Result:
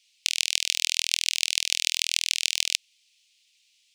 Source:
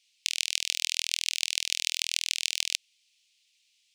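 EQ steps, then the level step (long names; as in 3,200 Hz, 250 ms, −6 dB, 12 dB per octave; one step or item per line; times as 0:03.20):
high-pass filter 1,500 Hz 24 dB per octave
+4.0 dB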